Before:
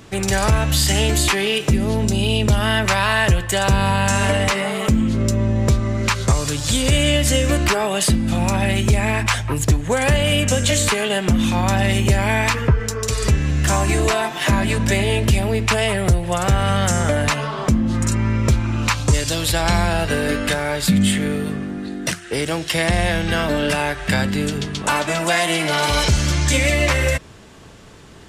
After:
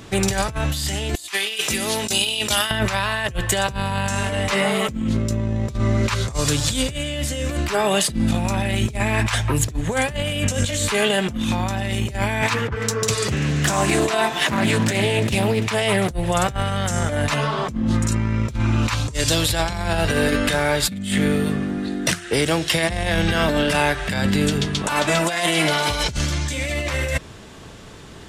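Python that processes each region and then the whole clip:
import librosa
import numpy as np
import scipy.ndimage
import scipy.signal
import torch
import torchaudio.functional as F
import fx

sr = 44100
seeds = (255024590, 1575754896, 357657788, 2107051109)

y = fx.chain(x, sr, fx.highpass(hz=1300.0, slope=6),
    fx.high_shelf(hz=3500.0, db=7.5),
    fx.over_compress(threshold_db=-25.0, ratio=-0.5), at=(1.15, 2.71))
y = fx.chain(y, sr, fx.highpass(hz=110.0, slope=24),
    fx.echo_single(ms=338, db=-21.5),
    fx.doppler_dist(depth_ms=0.44), at=(12.42, 16.11))
y = fx.peak_eq(y, sr, hz=3600.0, db=2.5, octaves=0.27)
y = fx.over_compress(y, sr, threshold_db=-20.0, ratio=-0.5)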